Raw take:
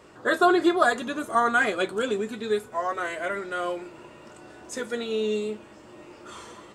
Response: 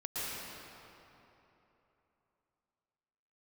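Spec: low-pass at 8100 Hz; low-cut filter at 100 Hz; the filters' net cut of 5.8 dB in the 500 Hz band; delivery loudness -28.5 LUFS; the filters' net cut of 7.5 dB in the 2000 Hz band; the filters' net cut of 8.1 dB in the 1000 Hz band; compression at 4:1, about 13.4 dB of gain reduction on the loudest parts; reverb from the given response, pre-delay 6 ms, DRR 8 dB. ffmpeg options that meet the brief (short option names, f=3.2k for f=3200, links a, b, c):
-filter_complex "[0:a]highpass=100,lowpass=8.1k,equalizer=f=500:t=o:g=-6,equalizer=f=1k:t=o:g=-7.5,equalizer=f=2k:t=o:g=-6.5,acompressor=threshold=-37dB:ratio=4,asplit=2[a][b];[1:a]atrim=start_sample=2205,adelay=6[c];[b][c]afir=irnorm=-1:irlink=0,volume=-12.5dB[d];[a][d]amix=inputs=2:normalize=0,volume=12dB"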